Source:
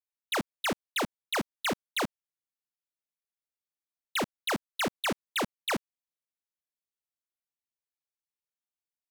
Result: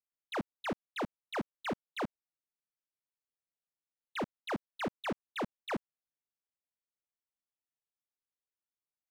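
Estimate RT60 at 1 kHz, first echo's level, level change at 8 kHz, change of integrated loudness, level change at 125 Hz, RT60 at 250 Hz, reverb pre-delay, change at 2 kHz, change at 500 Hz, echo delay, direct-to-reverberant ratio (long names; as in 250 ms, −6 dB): no reverb audible, no echo audible, −19.0 dB, −7.0 dB, −3.5 dB, no reverb audible, no reverb audible, −9.0 dB, −4.0 dB, no echo audible, no reverb audible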